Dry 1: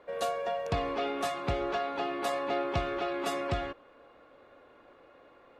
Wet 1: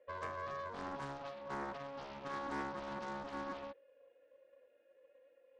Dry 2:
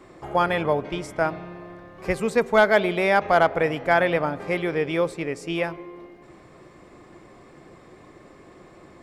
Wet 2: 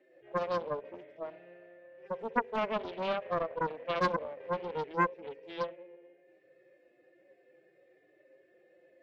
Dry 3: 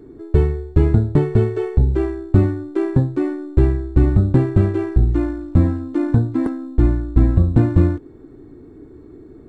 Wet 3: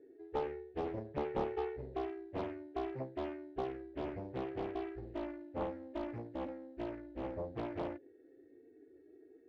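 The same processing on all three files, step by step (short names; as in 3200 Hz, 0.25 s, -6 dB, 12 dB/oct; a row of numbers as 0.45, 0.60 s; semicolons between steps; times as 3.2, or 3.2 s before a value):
median-filter separation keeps harmonic; vowel filter e; Doppler distortion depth 1 ms; gain -2 dB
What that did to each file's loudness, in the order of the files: -11.0, -12.0, -23.5 LU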